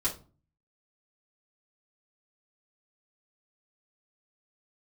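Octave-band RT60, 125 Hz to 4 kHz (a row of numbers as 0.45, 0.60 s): 0.70, 0.55, 0.40, 0.35, 0.25, 0.25 s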